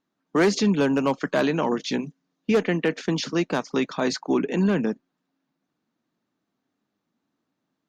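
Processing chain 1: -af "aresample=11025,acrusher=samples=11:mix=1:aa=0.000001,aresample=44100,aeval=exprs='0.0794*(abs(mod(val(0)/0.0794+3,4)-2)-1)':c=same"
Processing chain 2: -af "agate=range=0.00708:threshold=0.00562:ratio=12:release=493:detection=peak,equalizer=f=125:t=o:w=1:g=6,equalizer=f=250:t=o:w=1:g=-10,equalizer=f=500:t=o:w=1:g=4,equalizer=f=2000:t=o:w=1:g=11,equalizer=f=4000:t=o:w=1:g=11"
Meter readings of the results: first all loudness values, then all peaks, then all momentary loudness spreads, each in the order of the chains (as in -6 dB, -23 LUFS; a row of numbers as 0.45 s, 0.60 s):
-30.0 LUFS, -20.5 LUFS; -22.0 dBFS, -1.0 dBFS; 5 LU, 10 LU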